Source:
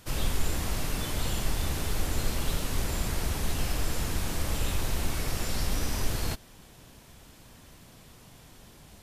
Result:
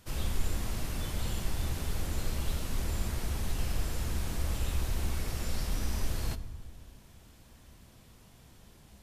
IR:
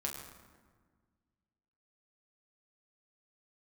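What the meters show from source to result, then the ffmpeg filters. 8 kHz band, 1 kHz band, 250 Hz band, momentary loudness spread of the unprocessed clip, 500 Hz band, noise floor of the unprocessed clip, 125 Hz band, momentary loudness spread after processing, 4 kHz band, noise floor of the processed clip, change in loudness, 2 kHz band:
-6.5 dB, -6.5 dB, -4.5 dB, 1 LU, -6.0 dB, -53 dBFS, -2.0 dB, 3 LU, -6.5 dB, -57 dBFS, -4.0 dB, -6.5 dB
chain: -filter_complex "[0:a]asplit=2[a][b];[1:a]atrim=start_sample=2205,lowshelf=f=250:g=10.5[c];[b][c]afir=irnorm=-1:irlink=0,volume=-10dB[d];[a][d]amix=inputs=2:normalize=0,volume=-8.5dB"

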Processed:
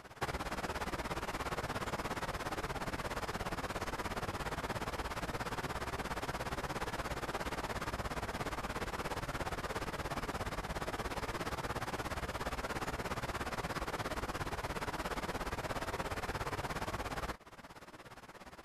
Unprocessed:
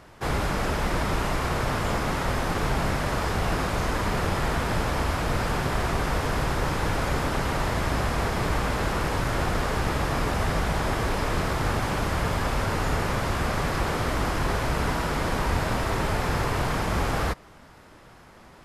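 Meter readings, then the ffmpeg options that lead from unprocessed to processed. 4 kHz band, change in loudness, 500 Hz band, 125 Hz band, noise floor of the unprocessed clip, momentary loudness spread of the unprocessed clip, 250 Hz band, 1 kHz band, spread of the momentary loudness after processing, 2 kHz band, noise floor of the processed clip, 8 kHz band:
-11.5 dB, -13.5 dB, -12.5 dB, -17.0 dB, -50 dBFS, 1 LU, -14.5 dB, -12.0 dB, 1 LU, -11.5 dB, -52 dBFS, -12.0 dB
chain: -af "flanger=delay=15.5:depth=7.2:speed=0.16,acompressor=threshold=-37dB:ratio=5,tremolo=f=17:d=0.87,lowshelf=f=190:g=-7,volume=5.5dB"

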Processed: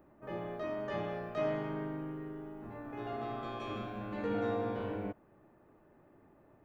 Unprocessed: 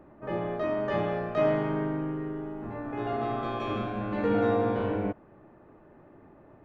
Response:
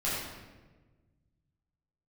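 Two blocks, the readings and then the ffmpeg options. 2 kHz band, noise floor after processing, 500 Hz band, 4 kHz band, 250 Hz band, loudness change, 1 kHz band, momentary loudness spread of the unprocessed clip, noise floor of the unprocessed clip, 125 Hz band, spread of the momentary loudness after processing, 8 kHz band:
-8.0 dB, -64 dBFS, -9.0 dB, -6.0 dB, -9.0 dB, -9.0 dB, -8.5 dB, 10 LU, -55 dBFS, -9.0 dB, 10 LU, n/a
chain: -af "aemphasis=mode=production:type=50kf,volume=-9dB"

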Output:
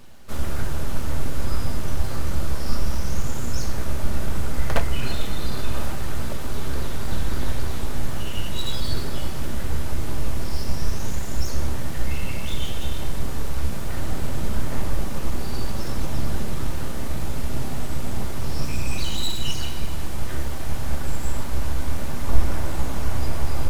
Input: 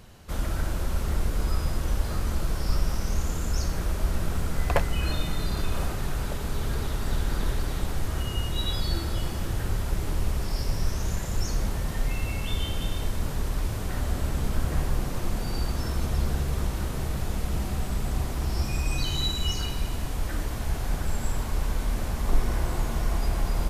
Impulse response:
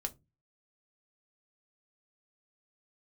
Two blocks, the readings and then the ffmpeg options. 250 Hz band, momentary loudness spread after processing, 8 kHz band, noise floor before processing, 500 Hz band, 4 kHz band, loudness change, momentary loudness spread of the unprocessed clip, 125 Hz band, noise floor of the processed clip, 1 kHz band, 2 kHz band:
+2.0 dB, 3 LU, +2.0 dB, -32 dBFS, +1.5 dB, +1.0 dB, 0.0 dB, 3 LU, +1.0 dB, -20 dBFS, +1.5 dB, +1.5 dB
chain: -filter_complex "[0:a]aeval=exprs='abs(val(0))':c=same,asplit=2[a][b];[1:a]atrim=start_sample=2205[c];[b][c]afir=irnorm=-1:irlink=0,volume=4.5dB[d];[a][d]amix=inputs=2:normalize=0,volume=-6dB"

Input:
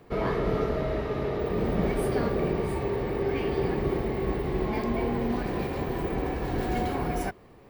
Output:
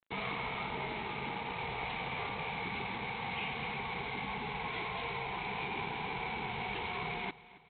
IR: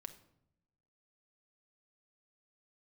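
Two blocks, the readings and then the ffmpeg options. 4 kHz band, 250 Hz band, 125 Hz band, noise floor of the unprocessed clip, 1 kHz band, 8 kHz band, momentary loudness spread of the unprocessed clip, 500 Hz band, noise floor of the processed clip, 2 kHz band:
+3.5 dB, -16.0 dB, -14.0 dB, -52 dBFS, -3.5 dB, n/a, 4 LU, -16.5 dB, -56 dBFS, +1.5 dB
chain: -filter_complex "[0:a]asplit=3[a][b][c];[a]bandpass=f=300:t=q:w=8,volume=0dB[d];[b]bandpass=f=870:t=q:w=8,volume=-6dB[e];[c]bandpass=f=2.24k:t=q:w=8,volume=-9dB[f];[d][e][f]amix=inputs=3:normalize=0,acontrast=51,aresample=8000,aeval=exprs='sgn(val(0))*max(abs(val(0))-0.00299,0)':c=same,aresample=44100,crystalizer=i=7:c=0,afftfilt=real='re*lt(hypot(re,im),0.0562)':imag='im*lt(hypot(re,im),0.0562)':win_size=1024:overlap=0.75,aecho=1:1:272|544|816|1088:0.112|0.0527|0.0248|0.0116,volume=4.5dB"

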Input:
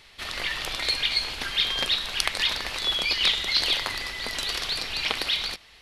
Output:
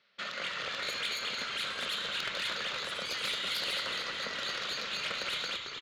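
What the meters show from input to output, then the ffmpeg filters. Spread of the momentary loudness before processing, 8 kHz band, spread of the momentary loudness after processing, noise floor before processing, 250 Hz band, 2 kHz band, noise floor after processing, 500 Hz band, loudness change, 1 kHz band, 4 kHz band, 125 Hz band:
8 LU, -8.0 dB, 3 LU, -53 dBFS, -6.5 dB, -6.0 dB, -42 dBFS, -3.5 dB, -8.5 dB, -4.0 dB, -9.5 dB, -10.0 dB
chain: -filter_complex "[0:a]highpass=f=150:w=0.5412,highpass=f=150:w=1.3066,equalizer=f=200:t=q:w=4:g=7,equalizer=f=320:t=q:w=4:g=-7,equalizer=f=550:t=q:w=4:g=9,equalizer=f=830:t=q:w=4:g=-7,equalizer=f=1.4k:t=q:w=4:g=10,lowpass=f=5.2k:w=0.5412,lowpass=f=5.2k:w=1.3066,volume=17.5dB,asoftclip=hard,volume=-17.5dB,alimiter=limit=-22.5dB:level=0:latency=1:release=416,afwtdn=0.00631,asplit=7[a][b][c][d][e][f][g];[b]adelay=222,afreqshift=-65,volume=-6dB[h];[c]adelay=444,afreqshift=-130,volume=-12dB[i];[d]adelay=666,afreqshift=-195,volume=-18dB[j];[e]adelay=888,afreqshift=-260,volume=-24.1dB[k];[f]adelay=1110,afreqshift=-325,volume=-30.1dB[l];[g]adelay=1332,afreqshift=-390,volume=-36.1dB[m];[a][h][i][j][k][l][m]amix=inputs=7:normalize=0,asoftclip=type=tanh:threshold=-23.5dB,afftfilt=real='re*lt(hypot(re,im),0.126)':imag='im*lt(hypot(re,im),0.126)':win_size=1024:overlap=0.75,volume=-2dB"

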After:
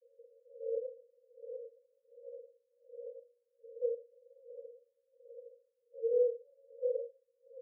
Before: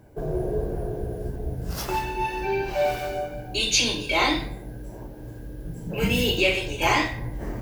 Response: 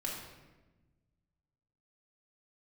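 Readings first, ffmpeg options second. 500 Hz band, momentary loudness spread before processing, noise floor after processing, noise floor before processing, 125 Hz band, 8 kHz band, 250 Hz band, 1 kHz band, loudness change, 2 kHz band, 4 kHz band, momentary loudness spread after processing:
-8.5 dB, 18 LU, -79 dBFS, -39 dBFS, under -40 dB, under -40 dB, under -40 dB, under -40 dB, -13.0 dB, under -40 dB, under -40 dB, 22 LU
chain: -af "asuperpass=centerf=500:order=20:qfactor=5.2,aeval=exprs='val(0)*pow(10,-32*(0.5-0.5*cos(2*PI*1.3*n/s))/20)':c=same,volume=5.5dB"

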